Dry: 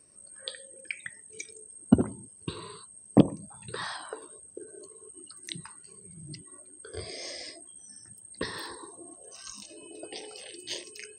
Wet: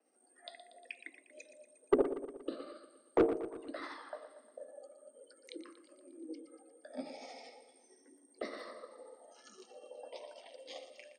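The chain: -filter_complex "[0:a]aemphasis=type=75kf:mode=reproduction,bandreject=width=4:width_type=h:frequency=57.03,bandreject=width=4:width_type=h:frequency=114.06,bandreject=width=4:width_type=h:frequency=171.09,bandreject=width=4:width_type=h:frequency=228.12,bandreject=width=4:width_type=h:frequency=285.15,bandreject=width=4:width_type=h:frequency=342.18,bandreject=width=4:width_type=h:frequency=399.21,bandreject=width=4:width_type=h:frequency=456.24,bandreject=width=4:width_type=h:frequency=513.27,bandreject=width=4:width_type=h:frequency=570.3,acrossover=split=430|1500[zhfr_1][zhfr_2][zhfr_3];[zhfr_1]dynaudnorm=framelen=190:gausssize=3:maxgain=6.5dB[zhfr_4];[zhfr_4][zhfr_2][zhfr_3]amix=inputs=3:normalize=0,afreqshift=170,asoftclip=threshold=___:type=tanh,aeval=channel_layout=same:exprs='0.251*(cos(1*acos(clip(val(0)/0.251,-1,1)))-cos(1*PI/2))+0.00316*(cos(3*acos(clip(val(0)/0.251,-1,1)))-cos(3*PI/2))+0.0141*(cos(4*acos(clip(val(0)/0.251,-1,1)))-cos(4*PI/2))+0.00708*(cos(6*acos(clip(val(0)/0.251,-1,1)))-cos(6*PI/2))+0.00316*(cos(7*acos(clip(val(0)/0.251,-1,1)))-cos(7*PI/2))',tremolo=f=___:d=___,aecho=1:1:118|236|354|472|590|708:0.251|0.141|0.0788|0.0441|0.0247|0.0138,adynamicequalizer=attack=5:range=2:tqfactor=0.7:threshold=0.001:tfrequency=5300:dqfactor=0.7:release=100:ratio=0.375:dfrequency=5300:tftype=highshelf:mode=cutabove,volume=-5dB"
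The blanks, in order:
-12dB, 13, 0.4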